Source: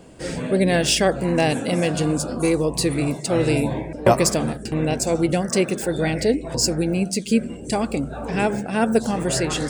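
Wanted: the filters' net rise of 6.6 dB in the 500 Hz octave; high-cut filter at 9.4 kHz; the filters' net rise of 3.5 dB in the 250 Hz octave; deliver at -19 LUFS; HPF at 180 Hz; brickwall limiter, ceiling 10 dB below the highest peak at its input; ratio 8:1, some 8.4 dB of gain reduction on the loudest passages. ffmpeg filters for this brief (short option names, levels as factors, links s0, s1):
-af "highpass=180,lowpass=9400,equalizer=f=250:t=o:g=4,equalizer=f=500:t=o:g=7,acompressor=threshold=0.2:ratio=8,volume=1.68,alimiter=limit=0.355:level=0:latency=1"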